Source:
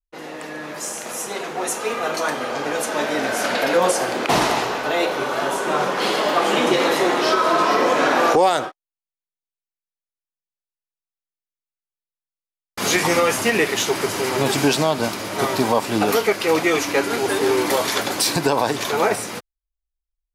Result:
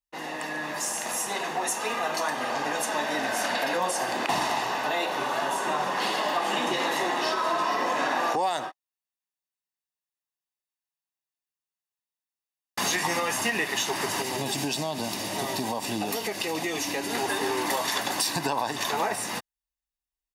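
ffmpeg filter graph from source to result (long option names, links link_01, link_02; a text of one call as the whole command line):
ffmpeg -i in.wav -filter_complex "[0:a]asettb=1/sr,asplit=3[link_01][link_02][link_03];[link_01]atrim=end=14.224[link_04];[link_02]atrim=start=14.22:end=17.15,asetpts=PTS-STARTPTS,afade=type=in:duration=0.004:curve=qsin,afade=type=out:start_time=2.926:duration=0.004:curve=qsin,equalizer=frequency=1300:width=1:gain=-9,acompressor=threshold=-24dB:ratio=2:attack=3.2:release=140:knee=1:detection=peak[link_05];[link_03]atrim=start=17.146[link_06];[link_04][link_05]acrossfade=duration=0.004:curve1=hsin:curve2=qsin[link_07];[link_07][link_06]acrossfade=duration=0.004:curve1=qsin:curve2=hsin,highpass=frequency=230:poles=1,aecho=1:1:1.1:0.49,acompressor=threshold=-26dB:ratio=3" out.wav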